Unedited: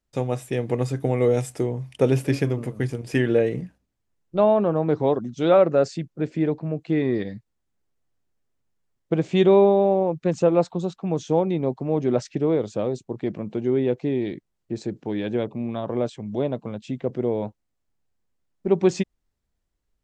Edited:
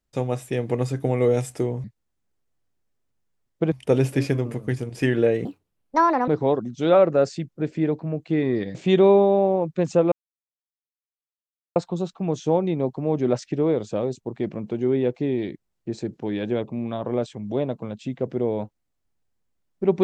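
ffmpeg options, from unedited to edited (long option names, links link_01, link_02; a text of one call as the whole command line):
ffmpeg -i in.wav -filter_complex "[0:a]asplit=7[link_01][link_02][link_03][link_04][link_05][link_06][link_07];[link_01]atrim=end=1.842[link_08];[link_02]atrim=start=7.338:end=9.222[link_09];[link_03]atrim=start=1.838:end=3.574[link_10];[link_04]atrim=start=3.57:end=4.87,asetpts=PTS-STARTPTS,asetrate=69237,aresample=44100[link_11];[link_05]atrim=start=4.866:end=7.342[link_12];[link_06]atrim=start=9.218:end=10.59,asetpts=PTS-STARTPTS,afade=type=out:start_time=1.368:duration=0.004:curve=hsin,apad=pad_dur=1.64[link_13];[link_07]atrim=start=10.59,asetpts=PTS-STARTPTS,afade=type=in:duration=0.004:curve=hsin[link_14];[link_08][link_09]acrossfade=duration=0.004:curve1=hsin:curve2=hsin[link_15];[link_15][link_10]acrossfade=duration=0.004:curve1=hsin:curve2=hsin[link_16];[link_16][link_11]acrossfade=duration=0.004:curve1=hsin:curve2=hsin[link_17];[link_17][link_12]acrossfade=duration=0.004:curve1=hsin:curve2=hsin[link_18];[link_13][link_14]concat=n=2:v=0:a=1[link_19];[link_18][link_19]acrossfade=duration=0.004:curve1=hsin:curve2=hsin" out.wav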